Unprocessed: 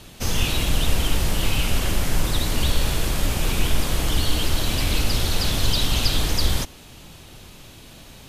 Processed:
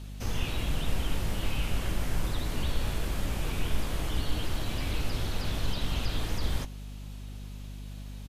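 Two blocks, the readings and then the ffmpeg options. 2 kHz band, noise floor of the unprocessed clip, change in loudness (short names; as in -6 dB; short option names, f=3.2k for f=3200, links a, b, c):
-10.0 dB, -45 dBFS, -11.0 dB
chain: -filter_complex "[0:a]acrossover=split=2800[a][b];[b]acompressor=threshold=-34dB:ratio=4:attack=1:release=60[c];[a][c]amix=inputs=2:normalize=0,aeval=exprs='val(0)+0.0251*(sin(2*PI*50*n/s)+sin(2*PI*2*50*n/s)/2+sin(2*PI*3*50*n/s)/3+sin(2*PI*4*50*n/s)/4+sin(2*PI*5*50*n/s)/5)':c=same,asplit=2[d][e];[e]adelay=19,volume=-12.5dB[f];[d][f]amix=inputs=2:normalize=0,volume=-9dB"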